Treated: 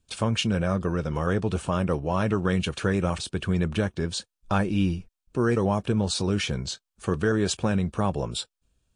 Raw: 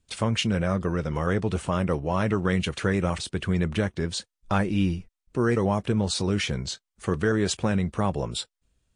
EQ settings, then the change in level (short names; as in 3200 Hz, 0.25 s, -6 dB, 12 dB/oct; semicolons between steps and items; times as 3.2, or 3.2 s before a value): notch 2000 Hz, Q 6.4; 0.0 dB